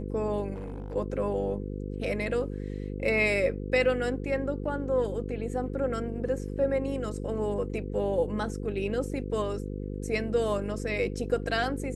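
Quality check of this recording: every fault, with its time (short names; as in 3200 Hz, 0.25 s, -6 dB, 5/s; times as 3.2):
buzz 50 Hz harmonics 10 -35 dBFS
0.53–0.96 clipped -33 dBFS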